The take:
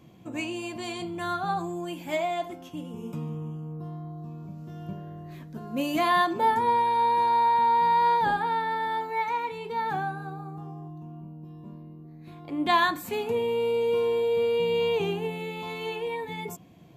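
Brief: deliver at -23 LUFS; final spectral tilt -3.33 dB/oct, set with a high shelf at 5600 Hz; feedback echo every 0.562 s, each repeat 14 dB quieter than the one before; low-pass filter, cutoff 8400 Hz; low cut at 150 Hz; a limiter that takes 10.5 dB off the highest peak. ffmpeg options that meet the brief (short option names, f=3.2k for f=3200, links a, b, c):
-af "highpass=150,lowpass=8.4k,highshelf=f=5.6k:g=6,alimiter=limit=-21dB:level=0:latency=1,aecho=1:1:562|1124:0.2|0.0399,volume=7dB"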